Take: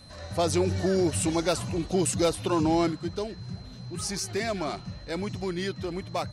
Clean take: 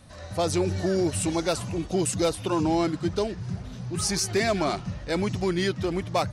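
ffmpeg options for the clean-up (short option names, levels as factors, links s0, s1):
-af "bandreject=f=4100:w=30,asetnsamples=n=441:p=0,asendcmd='2.93 volume volume 5.5dB',volume=1"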